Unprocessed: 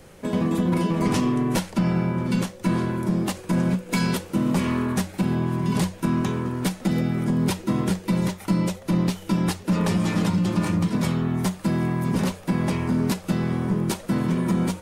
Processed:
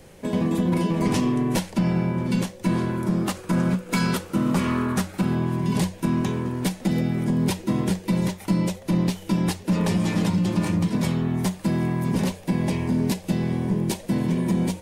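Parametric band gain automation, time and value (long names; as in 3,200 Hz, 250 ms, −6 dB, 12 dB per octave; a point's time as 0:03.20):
parametric band 1,300 Hz 0.39 octaves
0:02.66 −6 dB
0:03.26 +5.5 dB
0:05.20 +5.5 dB
0:05.65 −6.5 dB
0:12.09 −6.5 dB
0:12.62 −14 dB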